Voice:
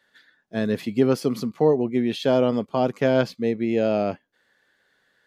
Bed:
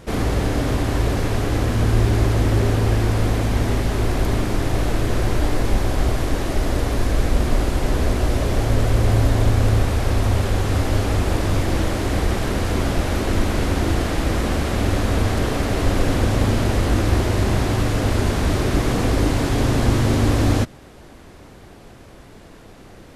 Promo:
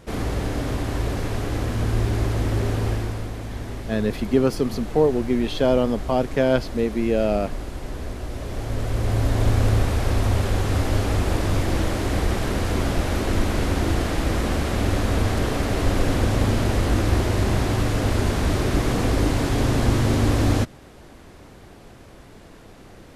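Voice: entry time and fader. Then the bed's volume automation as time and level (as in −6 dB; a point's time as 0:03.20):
3.35 s, +0.5 dB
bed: 0:02.88 −5 dB
0:03.30 −12 dB
0:08.28 −12 dB
0:09.52 −2 dB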